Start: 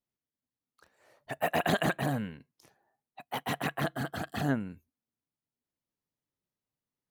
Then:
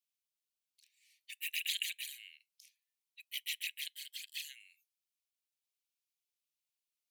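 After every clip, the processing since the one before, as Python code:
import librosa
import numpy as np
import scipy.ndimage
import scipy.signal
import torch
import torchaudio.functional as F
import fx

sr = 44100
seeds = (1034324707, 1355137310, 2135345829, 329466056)

y = scipy.signal.sosfilt(scipy.signal.butter(12, 2200.0, 'highpass', fs=sr, output='sos'), x)
y = y * librosa.db_to_amplitude(2.5)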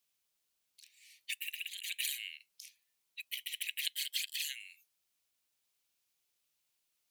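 y = fx.over_compress(x, sr, threshold_db=-43.0, ratio=-0.5)
y = y * librosa.db_to_amplitude(6.0)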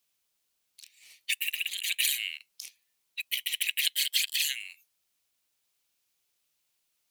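y = fx.leveller(x, sr, passes=1)
y = y * librosa.db_to_amplitude(6.0)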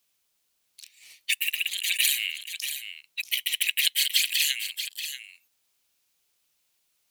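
y = x + 10.0 ** (-9.5 / 20.0) * np.pad(x, (int(635 * sr / 1000.0), 0))[:len(x)]
y = y * librosa.db_to_amplitude(4.0)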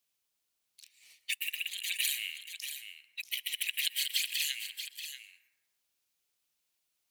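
y = fx.rev_plate(x, sr, seeds[0], rt60_s=1.4, hf_ratio=0.3, predelay_ms=110, drr_db=13.5)
y = y * librosa.db_to_amplitude(-8.5)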